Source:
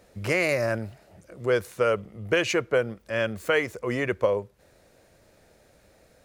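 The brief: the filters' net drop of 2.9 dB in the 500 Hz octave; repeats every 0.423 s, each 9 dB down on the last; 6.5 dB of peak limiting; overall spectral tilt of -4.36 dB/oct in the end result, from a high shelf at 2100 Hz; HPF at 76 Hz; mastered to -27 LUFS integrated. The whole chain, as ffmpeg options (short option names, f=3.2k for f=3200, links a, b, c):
-af "highpass=76,equalizer=f=500:t=o:g=-3,highshelf=f=2.1k:g=-4,alimiter=limit=-18.5dB:level=0:latency=1,aecho=1:1:423|846|1269|1692:0.355|0.124|0.0435|0.0152,volume=4.5dB"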